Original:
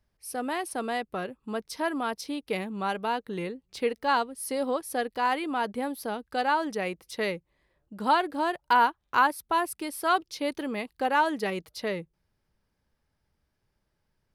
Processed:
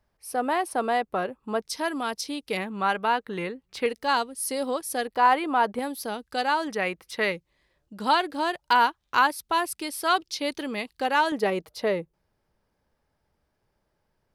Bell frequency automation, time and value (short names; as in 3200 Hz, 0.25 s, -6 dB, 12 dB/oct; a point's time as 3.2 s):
bell +7.5 dB 2.2 oct
820 Hz
from 1.62 s 6400 Hz
from 2.57 s 1500 Hz
from 3.86 s 7100 Hz
from 5.07 s 910 Hz
from 5.79 s 6500 Hz
from 6.68 s 1600 Hz
from 7.32 s 4900 Hz
from 11.32 s 640 Hz